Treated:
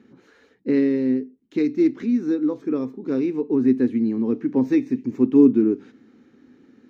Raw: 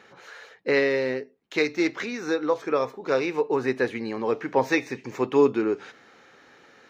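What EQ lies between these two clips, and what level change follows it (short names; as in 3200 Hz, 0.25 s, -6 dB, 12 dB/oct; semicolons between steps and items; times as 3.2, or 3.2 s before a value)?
EQ curve 170 Hz 0 dB, 250 Hz +12 dB, 600 Hz -17 dB; +4.0 dB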